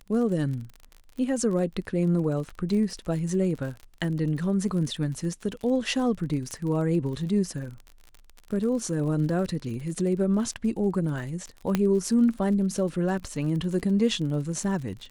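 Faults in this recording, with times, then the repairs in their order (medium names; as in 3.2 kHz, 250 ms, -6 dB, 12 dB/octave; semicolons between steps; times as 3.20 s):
crackle 37 per s -34 dBFS
6.51 s: pop -22 dBFS
11.75 s: pop -10 dBFS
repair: de-click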